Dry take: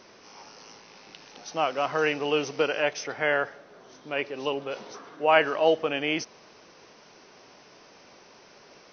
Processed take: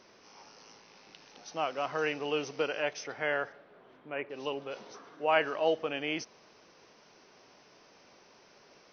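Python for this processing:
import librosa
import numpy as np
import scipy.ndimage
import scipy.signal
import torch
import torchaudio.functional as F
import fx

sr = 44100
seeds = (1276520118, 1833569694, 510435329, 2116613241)

y = fx.lowpass(x, sr, hz=fx.line((3.52, 4300.0), (4.29, 2200.0)), slope=24, at=(3.52, 4.29), fade=0.02)
y = F.gain(torch.from_numpy(y), -6.5).numpy()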